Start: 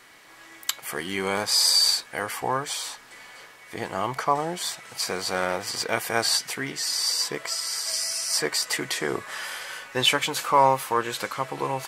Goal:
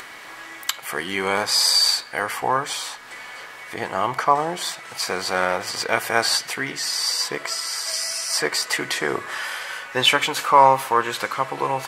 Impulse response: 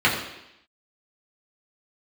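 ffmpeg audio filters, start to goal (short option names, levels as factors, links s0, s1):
-filter_complex "[0:a]equalizer=f=1300:w=0.39:g=6,acompressor=mode=upward:threshold=0.0282:ratio=2.5,asplit=2[s0][s1];[1:a]atrim=start_sample=2205,adelay=49[s2];[s1][s2]afir=irnorm=-1:irlink=0,volume=0.015[s3];[s0][s3]amix=inputs=2:normalize=0"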